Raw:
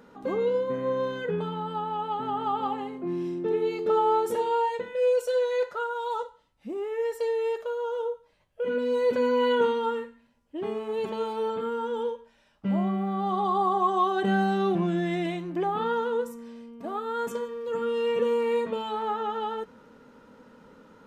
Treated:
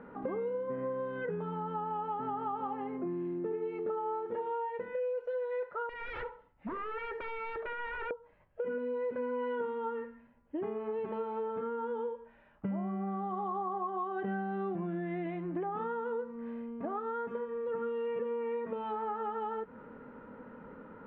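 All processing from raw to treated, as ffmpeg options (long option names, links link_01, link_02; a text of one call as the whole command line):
ffmpeg -i in.wav -filter_complex "[0:a]asettb=1/sr,asplit=3[link_01][link_02][link_03];[link_01]atrim=end=5.894[link_04];[link_02]atrim=start=5.89:end=8.11,asetpts=PTS-STARTPTS,afade=type=in:duration=0.004:curve=qsin,afade=type=out:start_time=2.216:duration=0.004:curve=qsin,aeval=exprs='0.0178*(abs(mod(val(0)/0.0178+3,4)-2)-1)':channel_layout=same,asplit=2[link_05][link_06];[link_06]adelay=68,lowpass=frequency=4700:poles=1,volume=-15.5dB,asplit=2[link_07][link_08];[link_08]adelay=68,lowpass=frequency=4700:poles=1,volume=0.34,asplit=2[link_09][link_10];[link_10]adelay=68,lowpass=frequency=4700:poles=1,volume=0.34[link_11];[link_05][link_07][link_09][link_11]amix=inputs=4:normalize=0,atrim=end_sample=97902[link_12];[link_03]atrim=start=8.106[link_13];[link_04][link_12]acrossfade=duration=0.004:curve1=hsin:curve2=qsin[link_14];[link_14][link_13]acrossfade=duration=0.004:curve1=qsin:curve2=hsin,lowpass=frequency=2100:width=0.5412,lowpass=frequency=2100:width=1.3066,acompressor=threshold=-37dB:ratio=6,volume=3dB" out.wav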